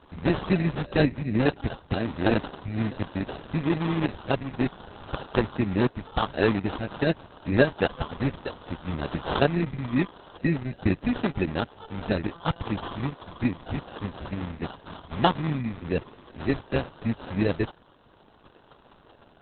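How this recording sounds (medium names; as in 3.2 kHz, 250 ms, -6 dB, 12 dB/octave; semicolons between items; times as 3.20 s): aliases and images of a low sample rate 2.2 kHz, jitter 0%; Opus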